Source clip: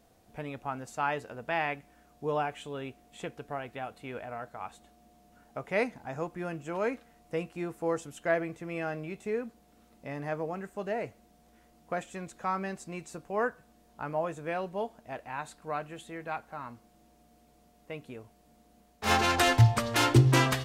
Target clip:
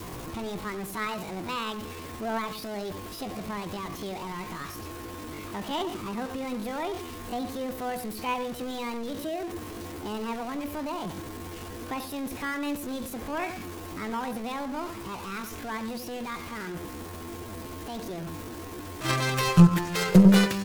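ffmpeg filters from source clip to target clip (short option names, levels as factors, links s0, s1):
-filter_complex "[0:a]aeval=exprs='val(0)+0.5*0.0335*sgn(val(0))':c=same,adynamicequalizer=threshold=0.00708:dfrequency=460:dqfactor=4:tfrequency=460:tqfactor=4:attack=5:release=100:ratio=0.375:range=2.5:mode=cutabove:tftype=bell,acrossover=split=270|1200[s0][s1][s2];[s0]acontrast=85[s3];[s3][s1][s2]amix=inputs=3:normalize=0,asplit=2[s4][s5];[s5]adelay=93,lowpass=f=1000:p=1,volume=0.398,asplit=2[s6][s7];[s7]adelay=93,lowpass=f=1000:p=1,volume=0.16,asplit=2[s8][s9];[s9]adelay=93,lowpass=f=1000:p=1,volume=0.16[s10];[s4][s6][s8][s10]amix=inputs=4:normalize=0,asetrate=66075,aresample=44100,atempo=0.66742,aeval=exprs='0.668*(cos(1*acos(clip(val(0)/0.668,-1,1)))-cos(1*PI/2))+0.133*(cos(2*acos(clip(val(0)/0.668,-1,1)))-cos(2*PI/2))+0.0335*(cos(7*acos(clip(val(0)/0.668,-1,1)))-cos(7*PI/2))':c=same,volume=0.75"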